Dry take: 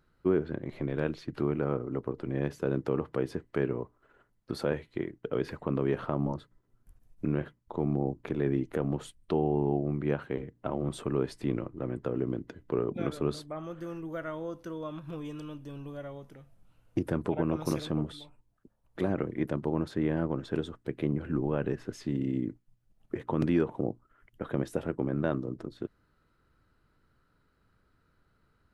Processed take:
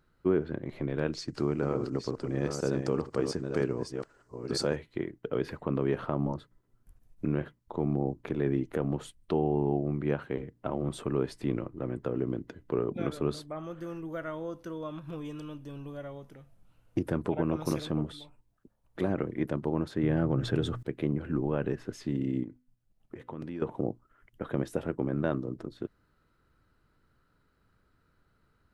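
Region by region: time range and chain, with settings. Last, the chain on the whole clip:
0:01.13–0:04.76: delay that plays each chunk backwards 492 ms, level −6 dB + flat-topped bell 6,300 Hz +14.5 dB 1.2 octaves
0:20.03–0:20.83: parametric band 120 Hz +12.5 dB 0.43 octaves + notch filter 980 Hz, Q 11 + envelope flattener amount 50%
0:22.43–0:23.62: tuned comb filter 250 Hz, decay 0.44 s, mix 40% + downward compressor 2.5 to 1, threshold −38 dBFS
whole clip: no processing

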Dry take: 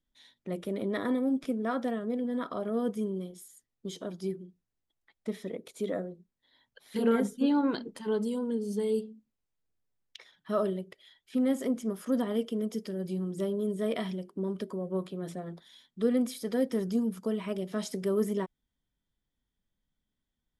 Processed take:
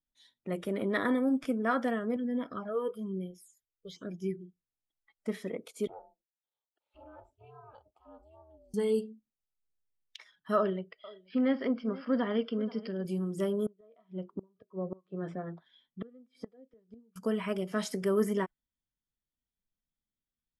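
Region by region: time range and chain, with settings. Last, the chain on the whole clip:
0:02.16–0:04.38: high-shelf EQ 7,400 Hz −8 dB + all-pass phaser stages 8, 1.1 Hz, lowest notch 200–1,400 Hz
0:05.87–0:08.74: downward compressor 3 to 1, threshold −30 dBFS + formant filter a + ring modulation 160 Hz
0:10.56–0:13.05: elliptic low-pass filter 4,900 Hz + single-tap delay 479 ms −18 dB
0:13.66–0:17.16: low-pass filter 2,800 Hz + gate with flip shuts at −26 dBFS, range −27 dB
whole clip: noise reduction from a noise print of the clip's start 11 dB; dynamic equaliser 1,600 Hz, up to +7 dB, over −51 dBFS, Q 1

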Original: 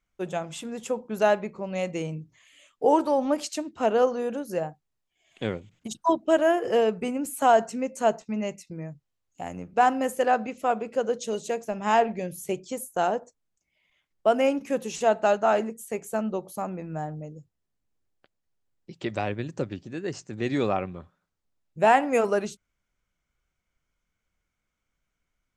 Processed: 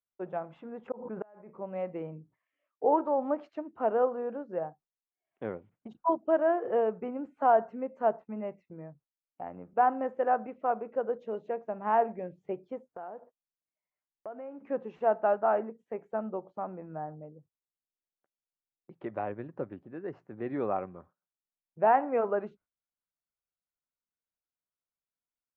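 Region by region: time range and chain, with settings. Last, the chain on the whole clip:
0:00.88–0:01.50: low-pass filter 2,600 Hz 24 dB per octave + gate with flip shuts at −18 dBFS, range −34 dB + background raised ahead of every attack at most 67 dB per second
0:12.96–0:14.64: one scale factor per block 5 bits + low-pass filter 2,800 Hz + downward compressor 4 to 1, threshold −36 dBFS
whole clip: noise gate −51 dBFS, range −13 dB; Bessel low-pass filter 870 Hz, order 4; spectral tilt +4 dB per octave

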